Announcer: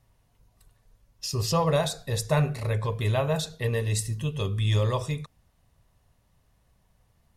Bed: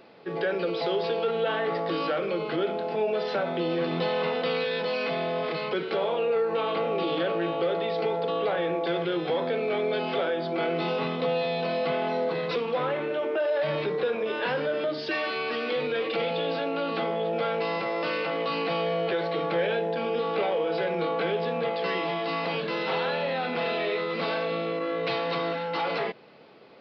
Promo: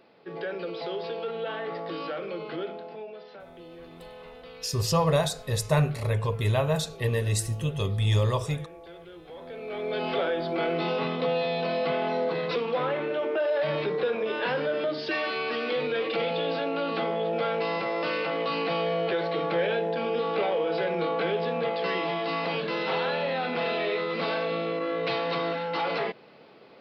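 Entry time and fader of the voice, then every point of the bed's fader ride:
3.40 s, +0.5 dB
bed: 2.61 s -6 dB
3.31 s -18.5 dB
9.27 s -18.5 dB
10.05 s 0 dB

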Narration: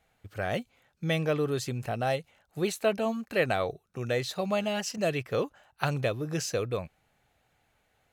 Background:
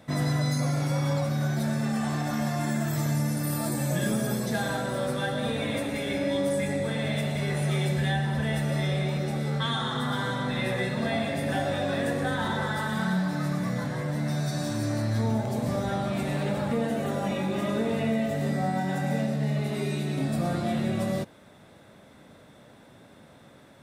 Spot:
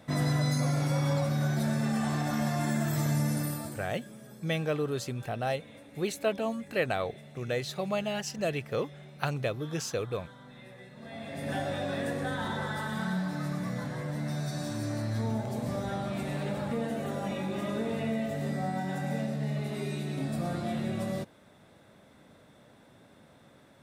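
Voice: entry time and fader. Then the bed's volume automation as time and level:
3.40 s, -2.5 dB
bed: 3.40 s -1.5 dB
4.01 s -21.5 dB
10.92 s -21.5 dB
11.51 s -5 dB

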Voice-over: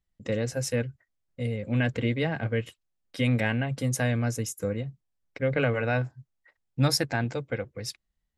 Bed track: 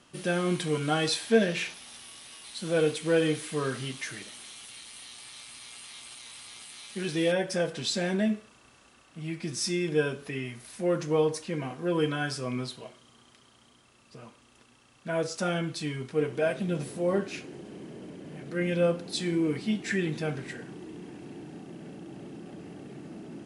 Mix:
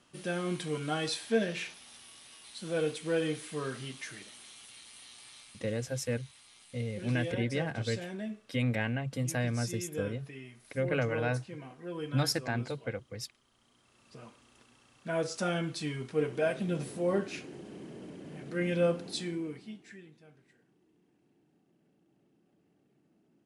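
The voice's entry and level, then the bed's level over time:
5.35 s, -5.5 dB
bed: 5.32 s -6 dB
5.77 s -12 dB
13.46 s -12 dB
14.09 s -2.5 dB
19.08 s -2.5 dB
20.19 s -27 dB

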